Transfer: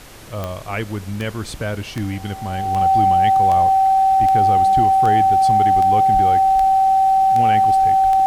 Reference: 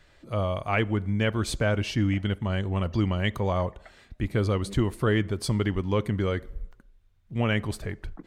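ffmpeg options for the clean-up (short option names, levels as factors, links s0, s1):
-filter_complex "[0:a]adeclick=t=4,bandreject=f=770:w=30,asplit=3[s0][s1][s2];[s0]afade=t=out:st=6.13:d=0.02[s3];[s1]highpass=f=140:w=0.5412,highpass=f=140:w=1.3066,afade=t=in:st=6.13:d=0.02,afade=t=out:st=6.25:d=0.02[s4];[s2]afade=t=in:st=6.25:d=0.02[s5];[s3][s4][s5]amix=inputs=3:normalize=0,afftdn=nr=22:nf=-32"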